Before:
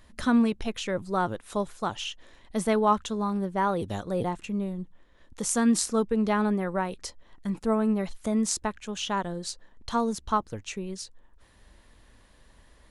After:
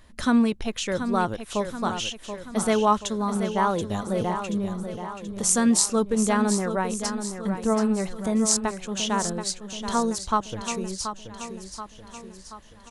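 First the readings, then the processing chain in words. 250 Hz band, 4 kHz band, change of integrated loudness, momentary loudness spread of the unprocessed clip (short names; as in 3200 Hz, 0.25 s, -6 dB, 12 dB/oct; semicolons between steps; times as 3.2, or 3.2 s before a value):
+2.5 dB, +5.5 dB, +3.0 dB, 14 LU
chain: dynamic EQ 7300 Hz, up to +6 dB, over -47 dBFS, Q 0.71; feedback echo 0.73 s, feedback 53%, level -9 dB; gain +2 dB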